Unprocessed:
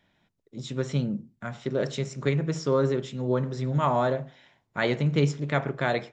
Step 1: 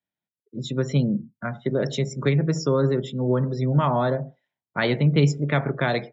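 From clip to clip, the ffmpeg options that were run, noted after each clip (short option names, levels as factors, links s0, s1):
-filter_complex "[0:a]highpass=94,afftdn=nr=31:nf=-43,acrossover=split=240|3000[s0][s1][s2];[s1]acompressor=threshold=0.0282:ratio=2[s3];[s0][s3][s2]amix=inputs=3:normalize=0,volume=2.11"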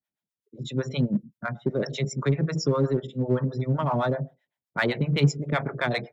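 -filter_complex "[0:a]acrossover=split=550[s0][s1];[s0]aeval=exprs='val(0)*(1-1/2+1/2*cos(2*PI*7.8*n/s))':c=same[s2];[s1]aeval=exprs='val(0)*(1-1/2-1/2*cos(2*PI*7.8*n/s))':c=same[s3];[s2][s3]amix=inputs=2:normalize=0,asplit=2[s4][s5];[s5]volume=15.8,asoftclip=hard,volume=0.0631,volume=0.355[s6];[s4][s6]amix=inputs=2:normalize=0"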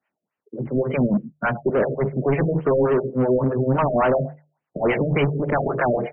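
-filter_complex "[0:a]asplit=2[s0][s1];[s1]highpass=f=720:p=1,volume=28.2,asoftclip=type=tanh:threshold=0.376[s2];[s0][s2]amix=inputs=2:normalize=0,lowpass=f=1700:p=1,volume=0.501,bandreject=f=50:t=h:w=6,bandreject=f=100:t=h:w=6,bandreject=f=150:t=h:w=6,afftfilt=real='re*lt(b*sr/1024,660*pow(3200/660,0.5+0.5*sin(2*PI*3.5*pts/sr)))':imag='im*lt(b*sr/1024,660*pow(3200/660,0.5+0.5*sin(2*PI*3.5*pts/sr)))':win_size=1024:overlap=0.75,volume=0.841"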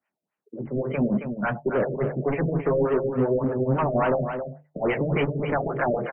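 -af "flanger=delay=3:depth=4.5:regen=-61:speed=1.7:shape=triangular,aecho=1:1:271:0.398"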